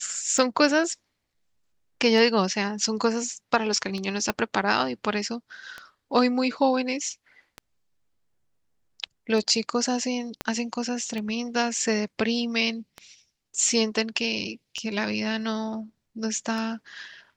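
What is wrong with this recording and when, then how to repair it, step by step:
scratch tick 33 1/3 rpm
0:04.30: click −9 dBFS
0:10.41: click −13 dBFS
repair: click removal

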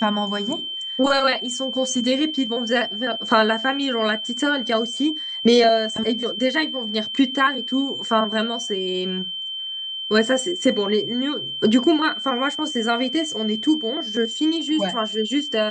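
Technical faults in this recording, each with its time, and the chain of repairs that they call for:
whistle 3,100 Hz −27 dBFS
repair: notch filter 3,100 Hz, Q 30

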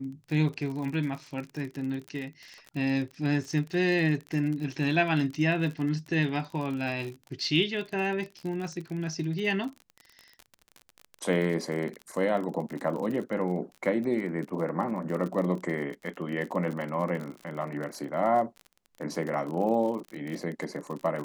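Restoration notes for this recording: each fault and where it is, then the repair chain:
surface crackle 45 per second −34 dBFS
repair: click removal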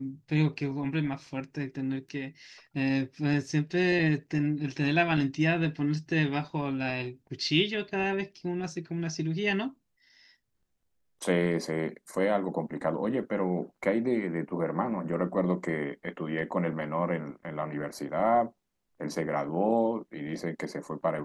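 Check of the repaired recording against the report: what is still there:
none of them is left

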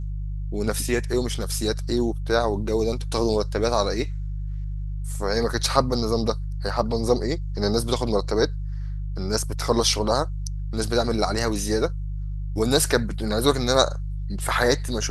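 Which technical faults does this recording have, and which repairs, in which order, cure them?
mains hum 50 Hz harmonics 3 −29 dBFS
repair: hum removal 50 Hz, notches 3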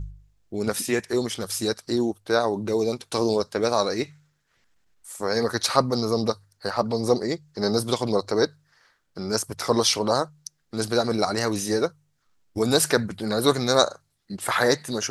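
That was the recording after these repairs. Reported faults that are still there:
none of them is left

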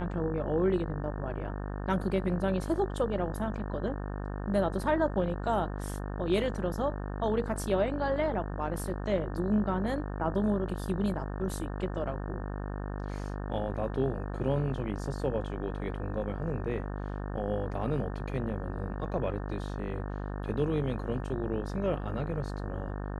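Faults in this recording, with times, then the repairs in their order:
mains buzz 50 Hz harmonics 36 −36 dBFS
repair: hum removal 50 Hz, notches 36

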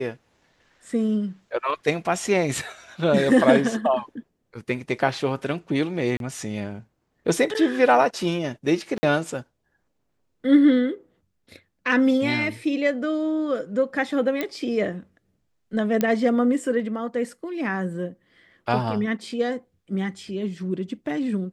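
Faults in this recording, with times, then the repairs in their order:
0:06.17–0:06.20: drop-out 32 ms
0:08.98–0:09.03: drop-out 50 ms
0:14.41: click −12 dBFS
0:16.01: click −9 dBFS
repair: click removal
repair the gap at 0:06.17, 32 ms
repair the gap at 0:08.98, 50 ms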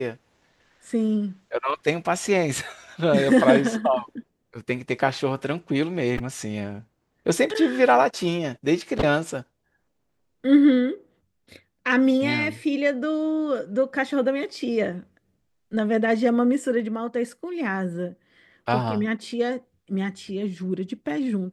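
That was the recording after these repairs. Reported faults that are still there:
none of them is left

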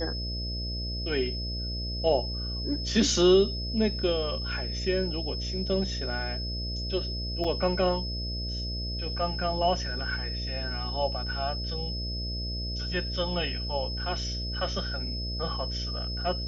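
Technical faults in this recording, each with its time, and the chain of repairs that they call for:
mains buzz 60 Hz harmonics 11 −34 dBFS
whistle 5,200 Hz −35 dBFS
0:07.44–0:07.45: drop-out 5.5 ms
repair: notch filter 5,200 Hz, Q 30
hum removal 60 Hz, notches 11
repair the gap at 0:07.44, 5.5 ms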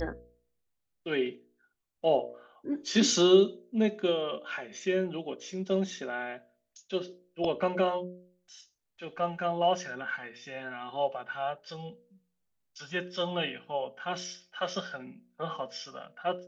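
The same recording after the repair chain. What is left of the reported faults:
none of them is left

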